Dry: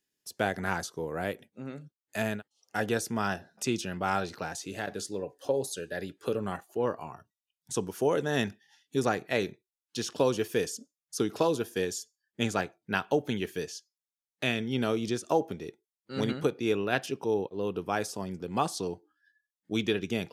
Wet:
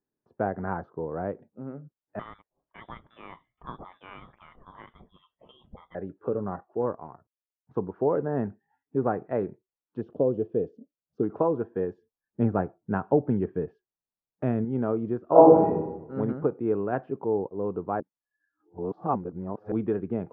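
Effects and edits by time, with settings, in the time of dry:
2.19–5.95 s: frequency inversion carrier 3.7 kHz
6.81–7.74 s: companding laws mixed up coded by A
8.28–8.96 s: distance through air 270 m
10.01–11.23 s: high-order bell 1.4 kHz -15 dB
11.98–14.65 s: bass shelf 330 Hz +7 dB
15.25–15.68 s: reverb throw, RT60 1 s, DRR -11 dB
18.00–19.72 s: reverse
whole clip: low-pass 1.2 kHz 24 dB/octave; trim +2 dB

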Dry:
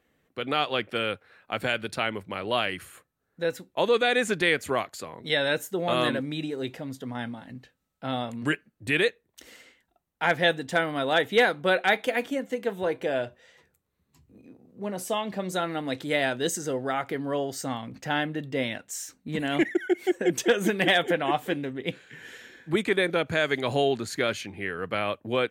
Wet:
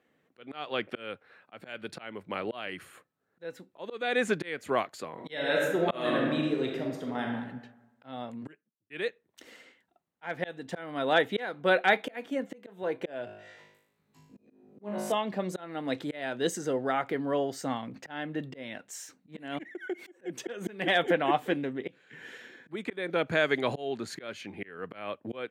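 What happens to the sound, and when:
5.12–7.31 s: reverb throw, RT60 1.1 s, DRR 0.5 dB
8.05–8.90 s: studio fade out
13.25–15.12 s: flutter echo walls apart 3.3 m, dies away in 0.72 s
19.73–20.24 s: compression, threshold -29 dBFS
whole clip: slow attack 352 ms; high-pass 150 Hz 12 dB/octave; treble shelf 5 kHz -10.5 dB

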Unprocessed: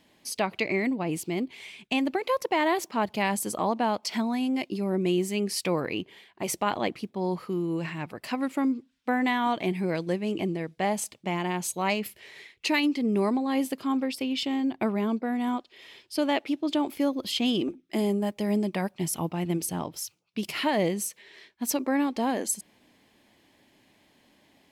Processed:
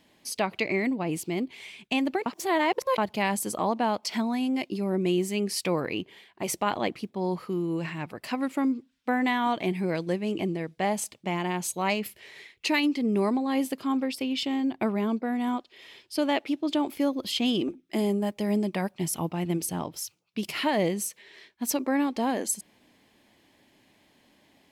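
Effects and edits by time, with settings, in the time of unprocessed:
2.26–2.98 s: reverse

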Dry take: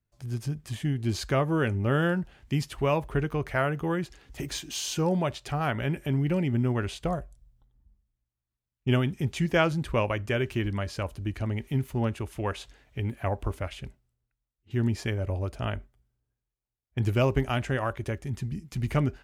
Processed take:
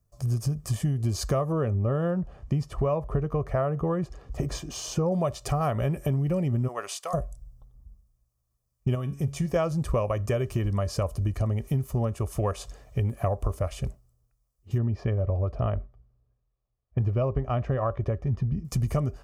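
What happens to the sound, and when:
1.52–5.12 s: low-pass 1.7 kHz 6 dB/octave
6.67–7.13 s: high-pass 580 Hz -> 1.5 kHz
8.95–9.56 s: feedback comb 140 Hz, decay 0.32 s
14.78–18.65 s: distance through air 300 m
whole clip: high-order bell 2.5 kHz -11 dB; comb 1.7 ms, depth 48%; compression, threshold -32 dBFS; trim +9 dB

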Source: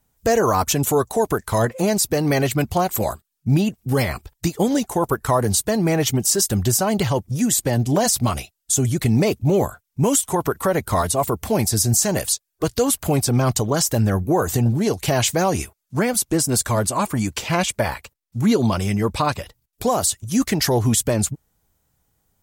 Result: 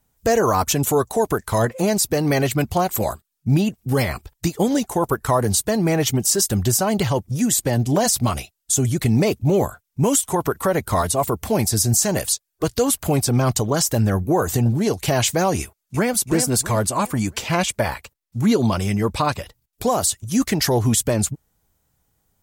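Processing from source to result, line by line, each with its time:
15.61–16.15 s: echo throw 330 ms, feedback 35%, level -7 dB

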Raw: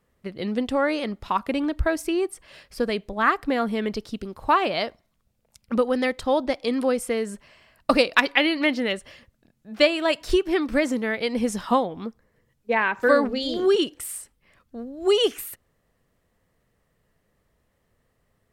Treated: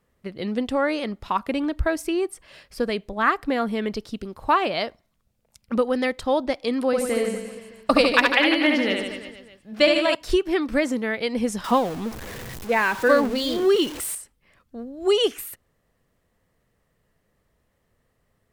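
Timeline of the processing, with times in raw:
6.86–10.15 s: reverse bouncing-ball echo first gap 70 ms, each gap 1.15×, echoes 6
11.64–14.15 s: jump at every zero crossing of -30 dBFS

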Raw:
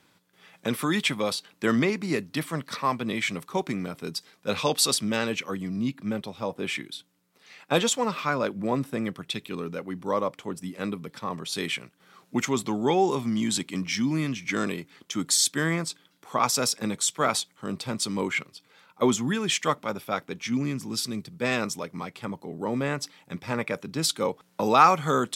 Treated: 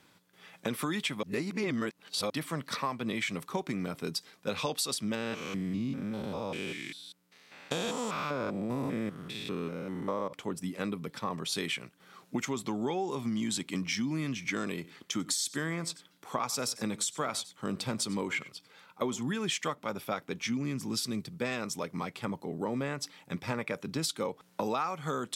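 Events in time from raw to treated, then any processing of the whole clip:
1.23–2.30 s: reverse
5.15–10.33 s: spectrogram pixelated in time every 200 ms
14.74–19.23 s: delay 95 ms -20.5 dB
whole clip: compression 8:1, threshold -29 dBFS

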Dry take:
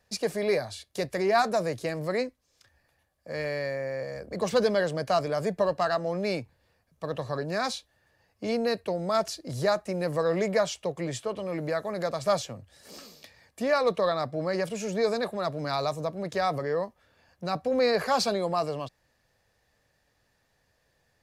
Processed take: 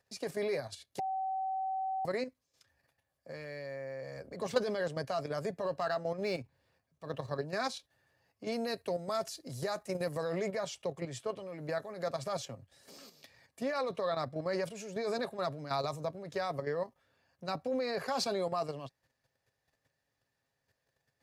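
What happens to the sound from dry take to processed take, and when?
0.99–2.05 s: bleep 764 Hz -22 dBFS
5.79–7.45 s: median filter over 3 samples
8.52–10.33 s: treble shelf 6.6 kHz +9 dB
whole clip: level held to a coarse grid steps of 10 dB; high-pass 59 Hz; comb 7.4 ms, depth 31%; trim -3.5 dB

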